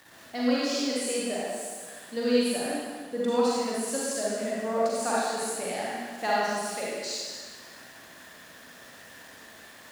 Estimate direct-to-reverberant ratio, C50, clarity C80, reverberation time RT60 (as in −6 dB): −7.0 dB, −5.0 dB, −1.5 dB, 1.6 s